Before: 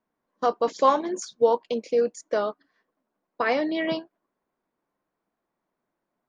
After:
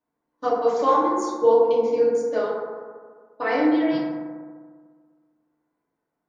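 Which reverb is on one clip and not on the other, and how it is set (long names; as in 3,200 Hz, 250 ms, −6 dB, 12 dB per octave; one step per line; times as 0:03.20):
feedback delay network reverb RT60 1.7 s, low-frequency decay 1.1×, high-frequency decay 0.3×, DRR −8.5 dB
level −8.5 dB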